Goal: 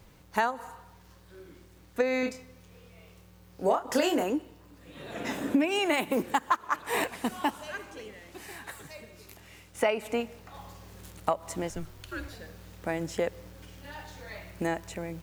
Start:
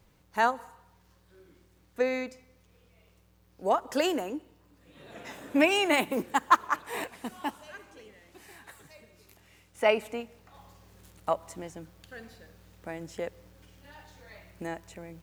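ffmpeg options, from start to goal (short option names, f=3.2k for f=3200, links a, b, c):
-filter_complex "[0:a]asettb=1/sr,asplit=3[a][b][c];[a]atrim=end=5.204[d];[b]atrim=start=5.2:end=5.79,asetpts=PTS-STARTPTS,afade=t=in:d=0.004:c=qsin,afade=t=out:st=0.586:d=0.004:c=qsin,equalizer=f=250:w=1.2:g=8.5[e];[c]atrim=start=5.786[f];[d][e]acrossfade=d=0.004:c1=hsin:c2=qsin[g];[g][f]acrossfade=d=0.004:c1=qsin:c2=hsin,acompressor=threshold=-30dB:ratio=10,asettb=1/sr,asplit=3[h][i][j];[h]atrim=end=2.204[k];[i]atrim=start=2.2:end=4.24,asetpts=PTS-STARTPTS,afade=t=in:d=0.004:c=qsin,afade=t=out:st=2.036:d=0.004:c=qsin,asplit=2[l][m];[m]adelay=28,volume=-5.5dB[n];[l][n]amix=inputs=2:normalize=0,atrim=end_sample=89964[o];[j]atrim=start=4.236[p];[k][o]acrossfade=d=0.004:c1=hsin:c2=qsin[q];[q][p]acrossfade=d=0.004:c1=qsin:c2=hsin,asettb=1/sr,asplit=3[r][s][t];[r]atrim=end=11.694[u];[s]atrim=start=11.69:end=12.33,asetpts=PTS-STARTPTS,afade=t=in:d=0.004:c=qsin,afade=t=out:st=0.636:d=0.004:c=qsin,afreqshift=-160[v];[t]atrim=start=12.326[w];[u][v]acrossfade=d=0.004:c1=hsin:c2=qsin[x];[x][w]acrossfade=d=0.004:c1=qsin:c2=hsin,volume=7.5dB"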